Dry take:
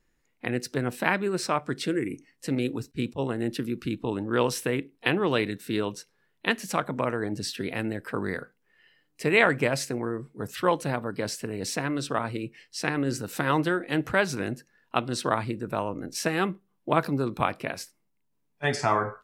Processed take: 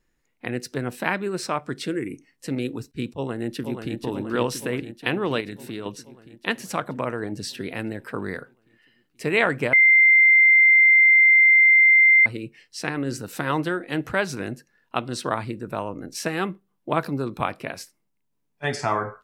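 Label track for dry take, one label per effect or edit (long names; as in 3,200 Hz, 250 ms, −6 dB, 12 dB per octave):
3.110000	3.970000	delay throw 480 ms, feedback 70%, level −6 dB
5.400000	5.860000	downward compressor 4 to 1, threshold −29 dBFS
9.730000	12.260000	beep over 2,090 Hz −11 dBFS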